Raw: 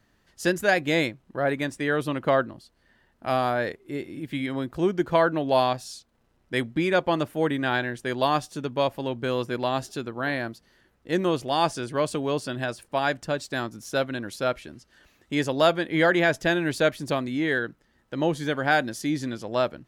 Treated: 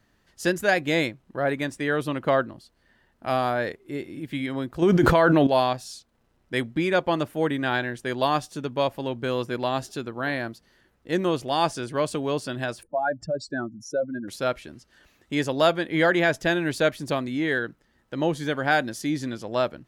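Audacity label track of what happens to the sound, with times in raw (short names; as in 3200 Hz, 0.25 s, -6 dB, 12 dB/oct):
4.820000	5.470000	fast leveller amount 100%
12.830000	14.280000	spectral contrast raised exponent 2.6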